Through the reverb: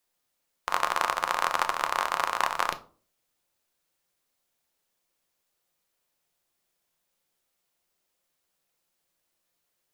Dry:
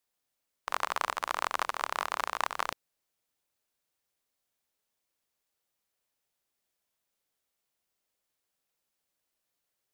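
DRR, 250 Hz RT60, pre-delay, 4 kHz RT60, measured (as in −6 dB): 7.5 dB, 0.55 s, 6 ms, 0.25 s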